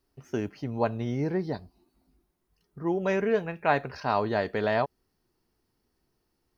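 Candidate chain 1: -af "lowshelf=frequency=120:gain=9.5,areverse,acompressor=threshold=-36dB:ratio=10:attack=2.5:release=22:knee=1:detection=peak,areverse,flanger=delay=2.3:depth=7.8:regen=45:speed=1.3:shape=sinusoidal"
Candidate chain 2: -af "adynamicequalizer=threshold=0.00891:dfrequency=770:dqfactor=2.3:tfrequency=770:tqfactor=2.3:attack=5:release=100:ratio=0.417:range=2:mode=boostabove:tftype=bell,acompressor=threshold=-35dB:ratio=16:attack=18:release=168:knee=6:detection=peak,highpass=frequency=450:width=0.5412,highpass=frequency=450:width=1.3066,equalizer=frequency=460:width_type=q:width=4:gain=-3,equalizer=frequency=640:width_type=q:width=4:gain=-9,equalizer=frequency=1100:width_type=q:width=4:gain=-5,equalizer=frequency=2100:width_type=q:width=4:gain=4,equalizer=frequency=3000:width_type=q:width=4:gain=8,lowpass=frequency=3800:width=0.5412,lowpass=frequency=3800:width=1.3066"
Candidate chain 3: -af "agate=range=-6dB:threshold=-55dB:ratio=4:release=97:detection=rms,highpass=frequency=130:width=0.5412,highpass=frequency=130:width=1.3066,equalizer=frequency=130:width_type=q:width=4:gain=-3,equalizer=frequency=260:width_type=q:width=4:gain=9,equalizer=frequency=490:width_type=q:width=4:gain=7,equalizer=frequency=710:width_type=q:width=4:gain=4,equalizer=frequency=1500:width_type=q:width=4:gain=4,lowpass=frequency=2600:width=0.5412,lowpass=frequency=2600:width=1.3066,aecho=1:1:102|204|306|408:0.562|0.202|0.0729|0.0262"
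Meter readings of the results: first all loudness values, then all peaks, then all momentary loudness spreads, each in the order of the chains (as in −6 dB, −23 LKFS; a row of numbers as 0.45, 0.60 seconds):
−43.5, −45.0, −24.5 LKFS; −29.0, −24.5, −6.5 dBFS; 7, 9, 10 LU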